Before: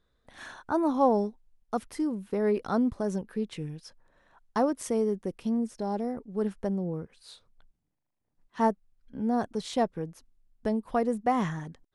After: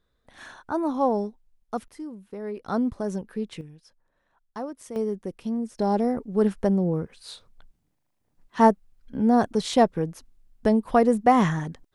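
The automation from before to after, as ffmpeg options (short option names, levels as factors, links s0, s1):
-af "asetnsamples=n=441:p=0,asendcmd='1.88 volume volume -7.5dB;2.68 volume volume 1dB;3.61 volume volume -8dB;4.96 volume volume 0dB;5.79 volume volume 8dB',volume=1"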